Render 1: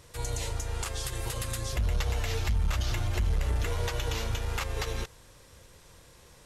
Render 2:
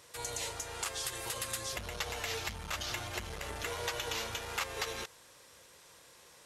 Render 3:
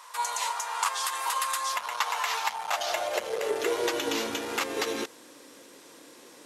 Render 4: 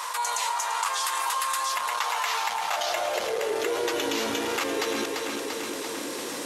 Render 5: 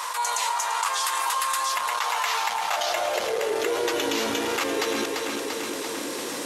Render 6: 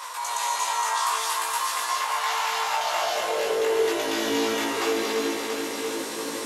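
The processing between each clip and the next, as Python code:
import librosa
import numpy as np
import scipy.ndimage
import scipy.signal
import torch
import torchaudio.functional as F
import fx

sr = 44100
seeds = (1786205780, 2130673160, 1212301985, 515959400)

y1 = fx.highpass(x, sr, hz=580.0, slope=6)
y2 = fx.low_shelf(y1, sr, hz=330.0, db=6.0)
y2 = fx.filter_sweep_highpass(y2, sr, from_hz=1000.0, to_hz=280.0, start_s=2.35, end_s=4.09, q=5.3)
y2 = y2 * 10.0 ** (5.0 / 20.0)
y3 = fx.echo_feedback(y2, sr, ms=342, feedback_pct=51, wet_db=-12.0)
y3 = fx.env_flatten(y3, sr, amount_pct=70)
y3 = y3 * 10.0 ** (-2.0 / 20.0)
y4 = fx.attack_slew(y3, sr, db_per_s=120.0)
y4 = y4 * 10.0 ** (2.0 / 20.0)
y5 = fx.doubler(y4, sr, ms=18.0, db=-2.5)
y5 = fx.rev_gated(y5, sr, seeds[0], gate_ms=300, shape='rising', drr_db=-3.0)
y5 = y5 * 10.0 ** (-7.0 / 20.0)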